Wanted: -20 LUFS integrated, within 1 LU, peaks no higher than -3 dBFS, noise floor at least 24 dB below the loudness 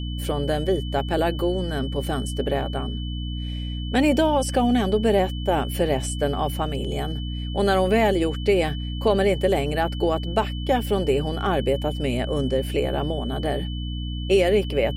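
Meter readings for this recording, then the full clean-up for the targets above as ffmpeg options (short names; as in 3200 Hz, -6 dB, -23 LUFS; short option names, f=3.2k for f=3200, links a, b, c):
hum 60 Hz; harmonics up to 300 Hz; hum level -27 dBFS; steady tone 3000 Hz; tone level -38 dBFS; loudness -23.5 LUFS; peak -7.0 dBFS; loudness target -20.0 LUFS
-> -af "bandreject=f=60:t=h:w=6,bandreject=f=120:t=h:w=6,bandreject=f=180:t=h:w=6,bandreject=f=240:t=h:w=6,bandreject=f=300:t=h:w=6"
-af "bandreject=f=3k:w=30"
-af "volume=3.5dB"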